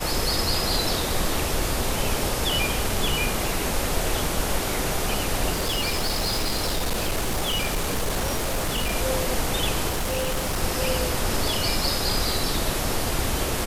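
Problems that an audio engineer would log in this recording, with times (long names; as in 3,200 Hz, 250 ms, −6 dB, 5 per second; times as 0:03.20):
0:05.54–0:08.95: clipping −20.5 dBFS
0:09.88–0:10.63: clipping −21.5 dBFS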